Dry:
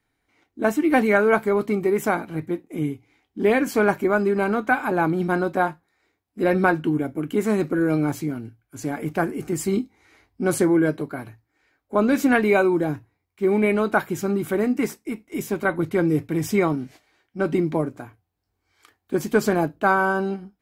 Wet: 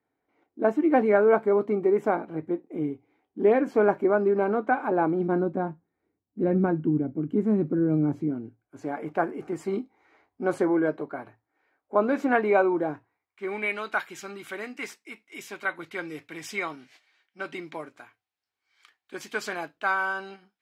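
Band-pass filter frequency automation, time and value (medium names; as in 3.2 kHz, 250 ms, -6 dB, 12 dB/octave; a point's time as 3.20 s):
band-pass filter, Q 0.85
5.14 s 510 Hz
5.54 s 200 Hz
7.99 s 200 Hz
8.93 s 760 Hz
12.86 s 760 Hz
13.76 s 2.8 kHz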